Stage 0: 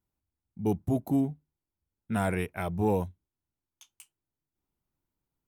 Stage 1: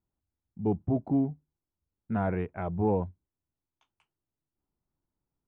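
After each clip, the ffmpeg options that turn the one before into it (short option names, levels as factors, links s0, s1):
-af "lowpass=1300"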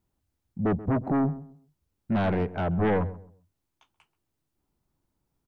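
-filter_complex "[0:a]asplit=2[s0][s1];[s1]aeval=exprs='0.188*sin(PI/2*4.47*val(0)/0.188)':c=same,volume=0.282[s2];[s0][s2]amix=inputs=2:normalize=0,asplit=2[s3][s4];[s4]adelay=132,lowpass=f=940:p=1,volume=0.168,asplit=2[s5][s6];[s6]adelay=132,lowpass=f=940:p=1,volume=0.28,asplit=2[s7][s8];[s8]adelay=132,lowpass=f=940:p=1,volume=0.28[s9];[s3][s5][s7][s9]amix=inputs=4:normalize=0,volume=0.891"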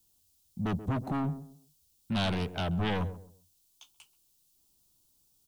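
-filter_complex "[0:a]acrossover=split=240|700[s0][s1][s2];[s1]asoftclip=type=tanh:threshold=0.0126[s3];[s2]aexciter=amount=4.7:drive=8.8:freq=2900[s4];[s0][s3][s4]amix=inputs=3:normalize=0,volume=0.708"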